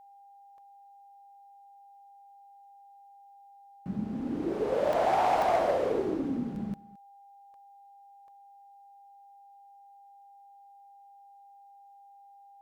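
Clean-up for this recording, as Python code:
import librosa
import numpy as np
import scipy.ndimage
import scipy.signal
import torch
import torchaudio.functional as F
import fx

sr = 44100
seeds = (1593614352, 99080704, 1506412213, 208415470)

y = fx.fix_declip(x, sr, threshold_db=-19.5)
y = fx.notch(y, sr, hz=800.0, q=30.0)
y = fx.fix_interpolate(y, sr, at_s=(0.58, 4.93, 5.42, 6.56, 7.54, 8.28), length_ms=1.6)
y = fx.fix_echo_inverse(y, sr, delay_ms=217, level_db=-20.5)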